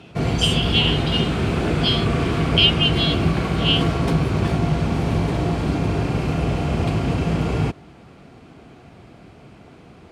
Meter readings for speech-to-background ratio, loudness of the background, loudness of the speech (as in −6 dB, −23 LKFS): 0.5 dB, −21.5 LKFS, −21.0 LKFS